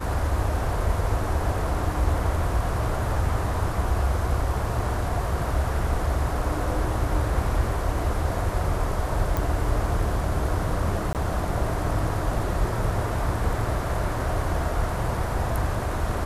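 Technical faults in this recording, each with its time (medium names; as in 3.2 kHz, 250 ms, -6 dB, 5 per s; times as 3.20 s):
9.37 s: pop
11.13–11.15 s: dropout 18 ms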